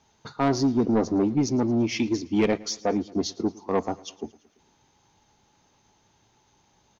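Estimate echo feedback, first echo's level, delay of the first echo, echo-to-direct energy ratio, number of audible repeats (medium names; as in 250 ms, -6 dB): 58%, -22.5 dB, 112 ms, -21.0 dB, 3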